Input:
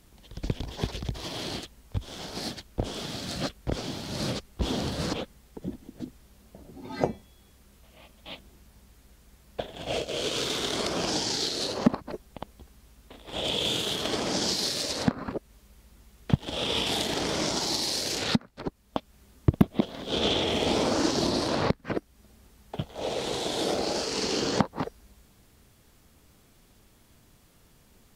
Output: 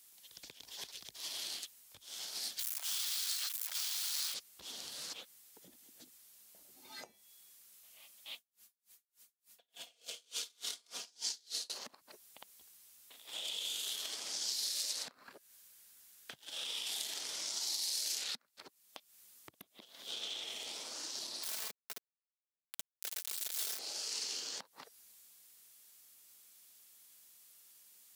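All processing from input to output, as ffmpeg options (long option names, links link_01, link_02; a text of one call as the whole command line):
ffmpeg -i in.wav -filter_complex "[0:a]asettb=1/sr,asplit=3[link_01][link_02][link_03];[link_01]atrim=end=2.594[link_04];[link_02]atrim=start=2.59:end=4.34,asetpts=PTS-STARTPTS,afade=type=in:duration=0.004:curve=qsin,afade=type=out:start_time=1.746:duration=0.004:curve=qsin,aeval=exprs='val(0)+0.5*0.0251*sgn(val(0))':channel_layout=same,highpass=frequency=930:width=0.5412,highpass=frequency=930:width=1.3066[link_05];[link_03]atrim=start=4.336[link_06];[link_04][link_05]acrossfade=duration=0.004:curve1=hsin:curve2=qsin[link_07];[link_07][link_06]acrossfade=duration=0.004:curve1=qsin:curve2=hsin,asettb=1/sr,asplit=3[link_08][link_09][link_10];[link_08]atrim=end=8.344[link_11];[link_09]atrim=start=8.34:end=11.7,asetpts=PTS-STARTPTS,afade=type=in:duration=0.004:curve=qsin,afade=type=out:start_time=3.356:duration=0.004:curve=qsin,aecho=1:1:4.2:0.53,atrim=end_sample=148176,aeval=exprs='val(0)*pow(10,-39*(0.5-0.5*cos(2*PI*3.4*n/s))/20)':channel_layout=same[link_12];[link_10]atrim=start=11.696[link_13];[link_11][link_12]acrossfade=duration=0.004:curve1=hsin:curve2=qsin[link_14];[link_14][link_13]acrossfade=duration=0.004:curve1=qsin:curve2=hsin,asettb=1/sr,asplit=3[link_15][link_16][link_17];[link_15]atrim=end=15.244[link_18];[link_16]atrim=start=15.24:end=16.64,asetpts=PTS-STARTPTS,afade=type=in:duration=0.004:curve=qsin,afade=type=out:start_time=1.396:duration=0.004:curve=qsin,equalizer=frequency=1600:width=7.1:gain=7.5,volume=14.5dB,asoftclip=hard,volume=-14.5dB[link_19];[link_17]atrim=start=16.636[link_20];[link_18][link_19]acrossfade=duration=0.004:curve1=hsin:curve2=qsin[link_21];[link_21][link_20]acrossfade=duration=0.004:curve1=qsin:curve2=hsin,asettb=1/sr,asplit=3[link_22][link_23][link_24];[link_22]atrim=end=21.434[link_25];[link_23]atrim=start=21.43:end=23.79,asetpts=PTS-STARTPTS,afade=type=in:duration=0.004:curve=qsin,afade=type=out:start_time=2.356:duration=0.004:curve=qsin,aeval=exprs='val(0)*gte(abs(val(0)),0.0631)':channel_layout=same,aecho=1:1:4.6:0.53,atrim=end_sample=104076[link_26];[link_24]atrim=start=23.786[link_27];[link_25][link_26]acrossfade=duration=0.004:curve1=hsin:curve2=qsin[link_28];[link_28][link_27]acrossfade=duration=0.004:curve1=qsin:curve2=hsin,acompressor=threshold=-33dB:ratio=5,aderivative,volume=3dB" out.wav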